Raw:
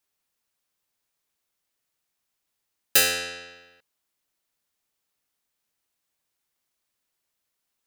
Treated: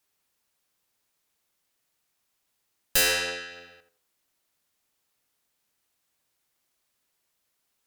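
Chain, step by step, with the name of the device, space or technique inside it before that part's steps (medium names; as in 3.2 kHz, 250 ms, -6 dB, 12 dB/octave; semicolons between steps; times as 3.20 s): 3.01–3.52 s: tone controls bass -7 dB, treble -2 dB; rockabilly slapback (valve stage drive 23 dB, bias 0.45; tape echo 82 ms, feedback 32%, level -7 dB, low-pass 1.1 kHz); trim +5.5 dB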